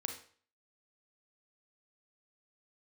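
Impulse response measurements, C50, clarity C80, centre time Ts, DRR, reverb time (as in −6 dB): 7.0 dB, 12.0 dB, 18 ms, 4.0 dB, 0.45 s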